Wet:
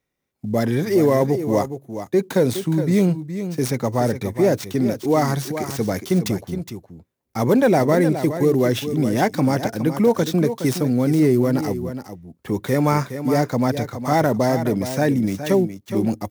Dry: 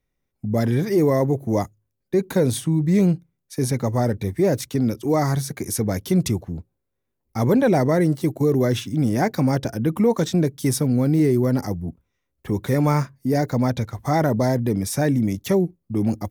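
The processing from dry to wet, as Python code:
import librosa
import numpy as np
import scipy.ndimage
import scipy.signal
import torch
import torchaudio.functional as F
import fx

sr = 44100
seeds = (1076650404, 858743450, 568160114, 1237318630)

y = fx.dead_time(x, sr, dead_ms=0.052)
y = fx.highpass(y, sr, hz=200.0, slope=6)
y = y + 10.0 ** (-10.0 / 20.0) * np.pad(y, (int(416 * sr / 1000.0), 0))[:len(y)]
y = F.gain(torch.from_numpy(y), 3.0).numpy()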